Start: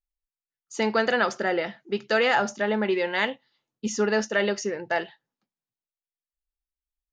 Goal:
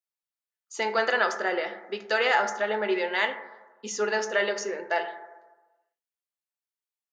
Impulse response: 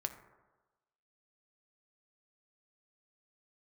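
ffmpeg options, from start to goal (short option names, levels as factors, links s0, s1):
-filter_complex "[0:a]highpass=440[s0];[1:a]atrim=start_sample=2205[s1];[s0][s1]afir=irnorm=-1:irlink=0"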